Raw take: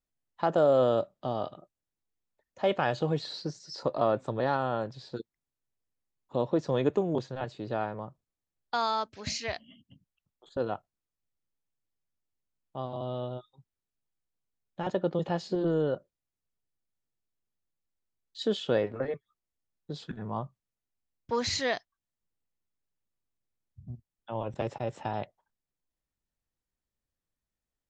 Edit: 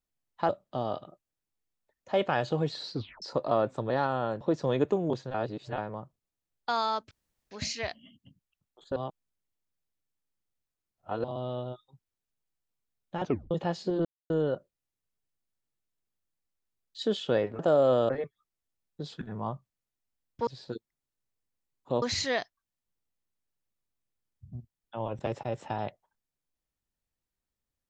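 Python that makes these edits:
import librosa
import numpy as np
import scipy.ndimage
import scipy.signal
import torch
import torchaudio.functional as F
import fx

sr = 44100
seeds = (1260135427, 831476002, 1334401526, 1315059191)

y = fx.edit(x, sr, fx.move(start_s=0.49, length_s=0.5, to_s=18.99),
    fx.tape_stop(start_s=3.44, length_s=0.28),
    fx.move(start_s=4.91, length_s=1.55, to_s=21.37),
    fx.reverse_span(start_s=7.39, length_s=0.44),
    fx.insert_room_tone(at_s=9.16, length_s=0.4),
    fx.reverse_span(start_s=10.61, length_s=2.28),
    fx.tape_stop(start_s=14.89, length_s=0.27),
    fx.insert_silence(at_s=15.7, length_s=0.25), tone=tone)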